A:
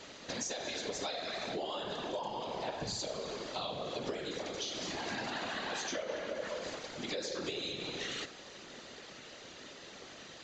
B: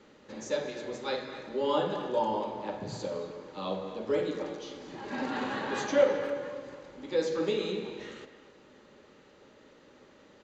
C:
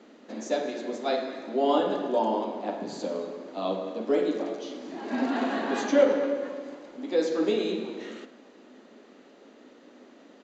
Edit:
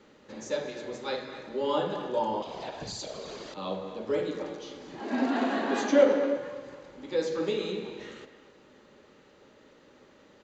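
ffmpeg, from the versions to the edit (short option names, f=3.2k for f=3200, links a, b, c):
-filter_complex "[1:a]asplit=3[a][b][c];[a]atrim=end=2.422[d];[0:a]atrim=start=2.418:end=3.542[e];[b]atrim=start=3.538:end=5.002[f];[2:a]atrim=start=4.998:end=6.372[g];[c]atrim=start=6.368[h];[d][e]acrossfade=d=0.004:c1=hsin:c2=hsin[i];[i][f]acrossfade=d=0.004:c1=hsin:c2=hsin[j];[j][g]acrossfade=d=0.004:c1=hsin:c2=hsin[k];[k][h]acrossfade=d=0.004:c1=hsin:c2=hsin"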